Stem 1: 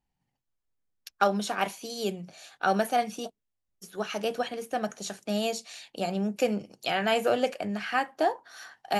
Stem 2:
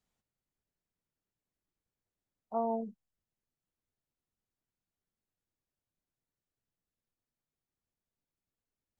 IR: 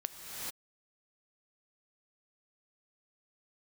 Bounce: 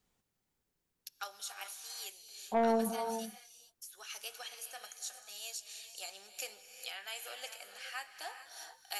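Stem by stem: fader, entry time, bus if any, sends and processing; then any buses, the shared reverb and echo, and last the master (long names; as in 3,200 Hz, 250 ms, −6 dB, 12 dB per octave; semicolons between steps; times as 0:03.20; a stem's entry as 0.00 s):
−5.0 dB, 0.00 s, send −4 dB, high-pass filter 580 Hz 12 dB per octave; first difference; speech leveller within 3 dB 0.5 s
+2.5 dB, 0.00 s, send −5 dB, no processing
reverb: on, pre-delay 3 ms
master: parametric band 390 Hz +2.5 dB 1 octave; notch filter 630 Hz, Q 12; soft clipping −21.5 dBFS, distortion −14 dB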